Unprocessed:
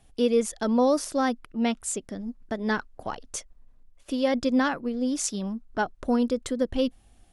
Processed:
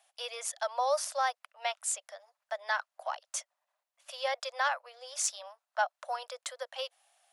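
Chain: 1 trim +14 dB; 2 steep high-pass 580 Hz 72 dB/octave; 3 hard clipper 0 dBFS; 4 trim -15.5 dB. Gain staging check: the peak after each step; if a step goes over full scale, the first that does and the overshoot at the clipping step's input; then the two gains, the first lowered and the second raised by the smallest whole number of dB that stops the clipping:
+4.0 dBFS, +3.0 dBFS, 0.0 dBFS, -15.5 dBFS; step 1, 3.0 dB; step 1 +11 dB, step 4 -12.5 dB

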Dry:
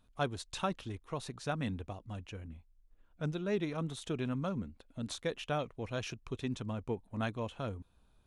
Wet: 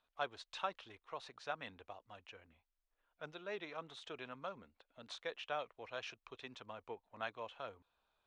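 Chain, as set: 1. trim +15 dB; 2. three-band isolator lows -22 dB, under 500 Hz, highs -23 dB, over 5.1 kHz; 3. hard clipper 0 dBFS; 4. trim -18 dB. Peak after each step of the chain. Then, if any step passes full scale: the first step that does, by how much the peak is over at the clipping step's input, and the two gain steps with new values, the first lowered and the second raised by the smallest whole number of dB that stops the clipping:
-4.5 dBFS, -5.5 dBFS, -5.5 dBFS, -23.5 dBFS; nothing clips

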